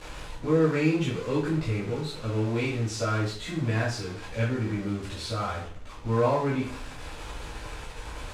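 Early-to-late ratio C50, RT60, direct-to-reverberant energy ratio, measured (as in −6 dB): 5.0 dB, 0.50 s, −8.5 dB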